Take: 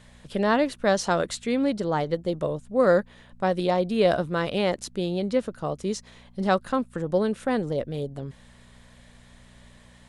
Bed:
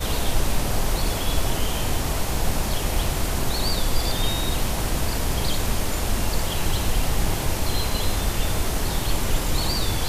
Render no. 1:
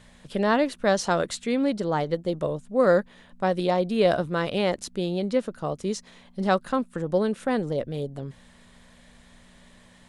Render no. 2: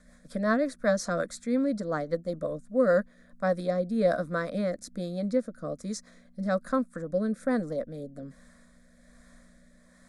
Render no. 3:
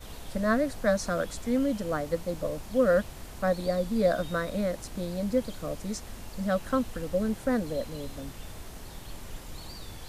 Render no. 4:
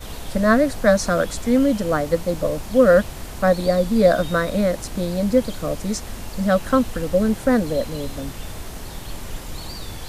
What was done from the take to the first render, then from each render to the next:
hum removal 60 Hz, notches 2
rotating-speaker cabinet horn 5.5 Hz, later 1.2 Hz, at 0:02.43; phaser with its sweep stopped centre 580 Hz, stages 8
mix in bed −19 dB
level +9.5 dB

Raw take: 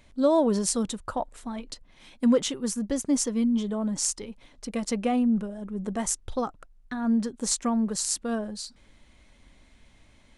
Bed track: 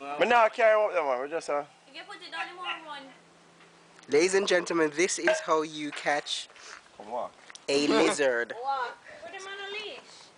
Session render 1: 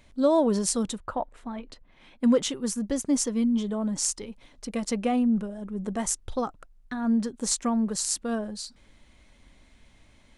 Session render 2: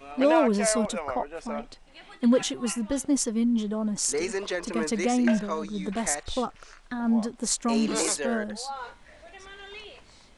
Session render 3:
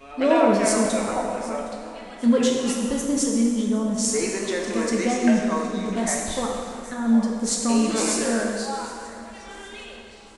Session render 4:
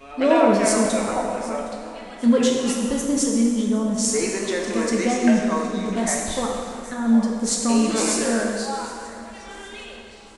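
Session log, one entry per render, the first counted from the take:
0:00.98–0:02.24: bass and treble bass −2 dB, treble −14 dB
mix in bed track −6 dB
repeating echo 765 ms, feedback 46%, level −19 dB; dense smooth reverb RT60 2.2 s, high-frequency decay 0.75×, DRR −1 dB
level +1.5 dB

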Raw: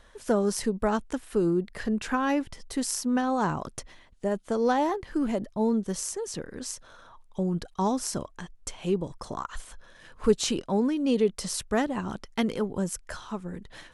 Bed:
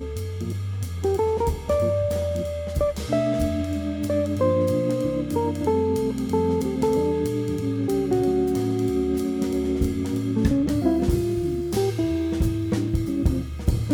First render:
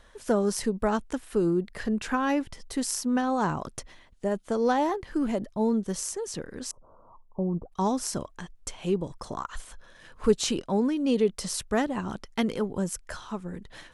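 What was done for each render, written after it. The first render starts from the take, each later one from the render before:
0:06.71–0:07.72: elliptic low-pass filter 1,100 Hz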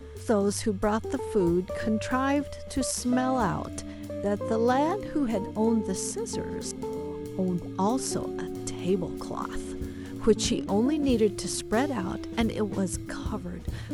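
mix in bed −12.5 dB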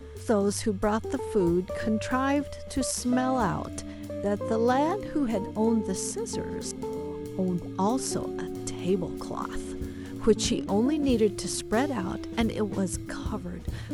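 no processing that can be heard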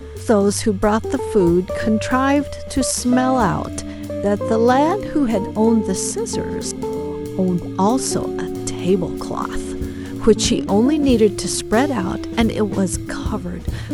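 level +9.5 dB
brickwall limiter −1 dBFS, peak gain reduction 1.5 dB

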